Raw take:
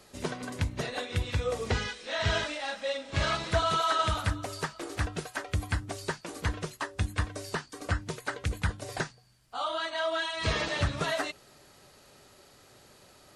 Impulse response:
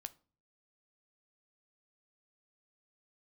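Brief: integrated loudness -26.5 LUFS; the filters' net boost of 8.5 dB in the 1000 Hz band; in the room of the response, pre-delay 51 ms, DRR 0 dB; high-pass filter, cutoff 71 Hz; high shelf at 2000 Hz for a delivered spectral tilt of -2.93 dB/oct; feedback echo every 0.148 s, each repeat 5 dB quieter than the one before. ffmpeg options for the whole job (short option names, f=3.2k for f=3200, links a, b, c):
-filter_complex "[0:a]highpass=71,equalizer=f=1k:t=o:g=9,highshelf=f=2k:g=7.5,aecho=1:1:148|296|444|592|740|888|1036:0.562|0.315|0.176|0.0988|0.0553|0.031|0.0173,asplit=2[a][b];[1:a]atrim=start_sample=2205,adelay=51[c];[b][c]afir=irnorm=-1:irlink=0,volume=4.5dB[d];[a][d]amix=inputs=2:normalize=0,volume=-4.5dB"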